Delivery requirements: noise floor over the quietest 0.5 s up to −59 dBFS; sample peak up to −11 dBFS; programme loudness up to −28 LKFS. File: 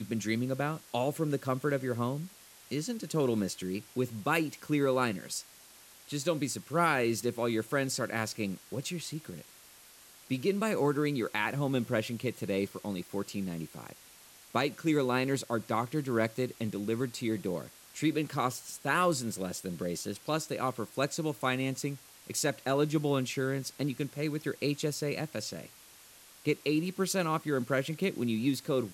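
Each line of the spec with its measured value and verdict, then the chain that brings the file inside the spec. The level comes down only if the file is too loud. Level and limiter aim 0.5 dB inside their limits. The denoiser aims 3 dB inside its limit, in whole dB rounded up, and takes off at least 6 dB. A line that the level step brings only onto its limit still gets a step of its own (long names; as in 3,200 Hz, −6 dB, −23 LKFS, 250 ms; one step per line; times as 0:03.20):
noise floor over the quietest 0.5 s −56 dBFS: out of spec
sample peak −14.0 dBFS: in spec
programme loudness −32.5 LKFS: in spec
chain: broadband denoise 6 dB, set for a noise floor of −56 dBFS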